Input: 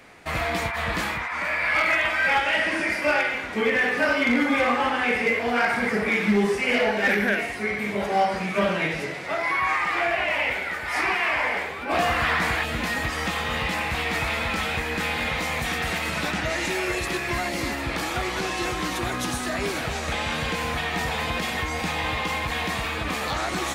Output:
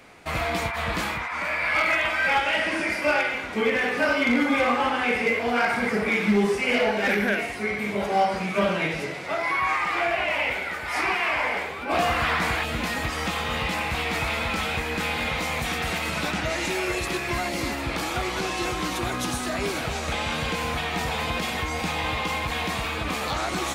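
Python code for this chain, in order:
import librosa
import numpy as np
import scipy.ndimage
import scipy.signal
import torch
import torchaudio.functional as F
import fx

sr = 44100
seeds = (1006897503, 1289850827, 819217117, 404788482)

y = fx.peak_eq(x, sr, hz=1800.0, db=-5.0, octaves=0.22)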